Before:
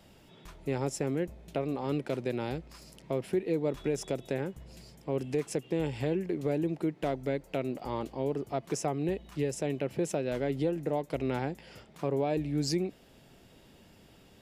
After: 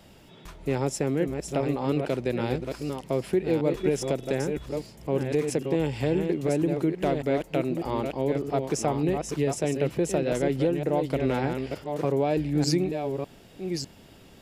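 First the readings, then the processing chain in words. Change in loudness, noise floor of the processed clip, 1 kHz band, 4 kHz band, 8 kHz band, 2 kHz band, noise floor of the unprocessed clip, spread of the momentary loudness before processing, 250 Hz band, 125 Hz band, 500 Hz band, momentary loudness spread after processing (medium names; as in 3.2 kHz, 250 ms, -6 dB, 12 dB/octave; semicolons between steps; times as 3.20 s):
+5.5 dB, -52 dBFS, +6.0 dB, +6.0 dB, +6.0 dB, +6.0 dB, -58 dBFS, 7 LU, +6.0 dB, +6.5 dB, +6.0 dB, 8 LU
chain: chunks repeated in reverse 602 ms, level -5.5 dB; trim +5 dB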